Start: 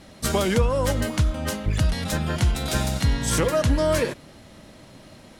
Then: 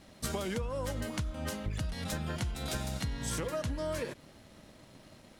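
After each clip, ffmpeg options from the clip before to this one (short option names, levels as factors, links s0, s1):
-af "acompressor=threshold=0.0562:ratio=6,aeval=exprs='sgn(val(0))*max(abs(val(0))-0.00141,0)':c=same,volume=0.473"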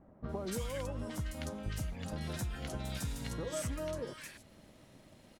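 -filter_complex "[0:a]acrossover=split=1300|4600[s0][s1][s2];[s1]adelay=240[s3];[s2]adelay=290[s4];[s0][s3][s4]amix=inputs=3:normalize=0,volume=0.708"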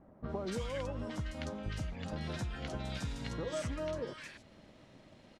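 -af "lowpass=5100,lowshelf=f=160:g=-3,volume=1.19"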